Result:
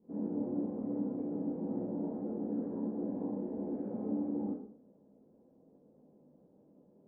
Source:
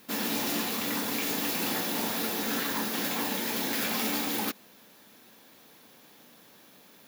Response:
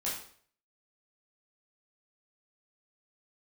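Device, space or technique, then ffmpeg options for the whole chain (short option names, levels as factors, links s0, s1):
next room: -filter_complex "[0:a]lowpass=f=550:w=0.5412,lowpass=f=550:w=1.3066[s0];[1:a]atrim=start_sample=2205[s1];[s0][s1]afir=irnorm=-1:irlink=0,volume=0.562"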